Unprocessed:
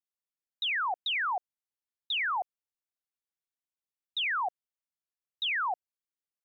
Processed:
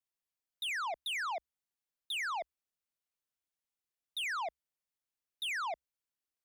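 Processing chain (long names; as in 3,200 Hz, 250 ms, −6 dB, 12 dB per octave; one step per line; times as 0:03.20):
soft clipping −34.5 dBFS, distortion −14 dB
frequency shifter −69 Hz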